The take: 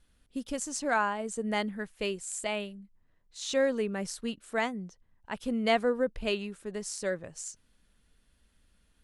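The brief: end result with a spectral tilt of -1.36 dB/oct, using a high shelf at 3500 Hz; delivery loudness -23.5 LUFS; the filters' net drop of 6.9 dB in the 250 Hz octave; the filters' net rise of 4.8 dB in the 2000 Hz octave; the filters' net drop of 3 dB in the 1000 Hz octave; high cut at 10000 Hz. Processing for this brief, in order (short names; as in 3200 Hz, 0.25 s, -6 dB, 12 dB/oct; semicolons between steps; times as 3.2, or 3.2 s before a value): LPF 10000 Hz; bell 250 Hz -8 dB; bell 1000 Hz -5.5 dB; bell 2000 Hz +6.5 dB; high shelf 3500 Hz +4.5 dB; gain +8.5 dB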